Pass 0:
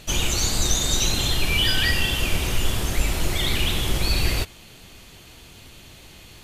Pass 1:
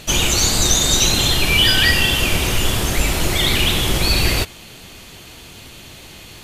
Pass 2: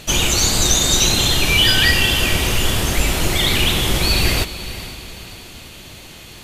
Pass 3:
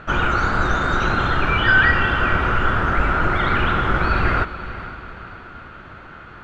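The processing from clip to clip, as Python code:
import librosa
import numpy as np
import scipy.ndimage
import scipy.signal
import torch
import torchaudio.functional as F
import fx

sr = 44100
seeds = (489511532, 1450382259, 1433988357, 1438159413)

y1 = fx.low_shelf(x, sr, hz=72.0, db=-6.5)
y1 = y1 * 10.0 ** (7.5 / 20.0)
y2 = fx.echo_diffused(y1, sr, ms=475, feedback_pct=45, wet_db=-13.5)
y3 = fx.lowpass_res(y2, sr, hz=1400.0, q=8.3)
y3 = y3 * 10.0 ** (-2.0 / 20.0)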